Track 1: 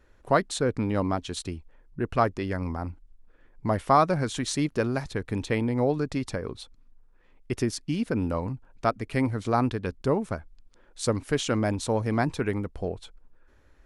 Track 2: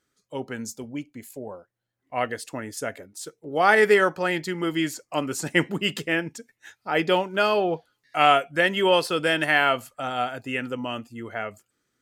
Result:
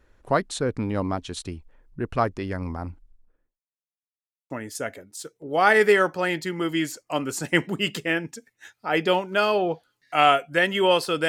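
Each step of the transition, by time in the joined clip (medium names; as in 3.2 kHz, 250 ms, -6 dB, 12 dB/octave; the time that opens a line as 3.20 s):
track 1
2.93–3.60 s: studio fade out
3.60–4.50 s: mute
4.50 s: go over to track 2 from 2.52 s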